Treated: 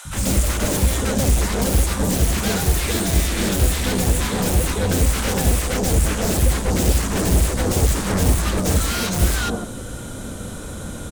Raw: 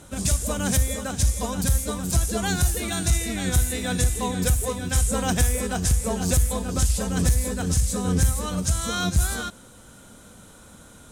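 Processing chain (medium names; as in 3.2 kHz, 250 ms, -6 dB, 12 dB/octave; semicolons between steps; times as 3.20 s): in parallel at -8 dB: sine folder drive 19 dB, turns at -11 dBFS; on the sum: tilt shelf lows +4 dB, about 730 Hz; three bands offset in time highs, lows, mids 50/140 ms, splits 190/940 Hz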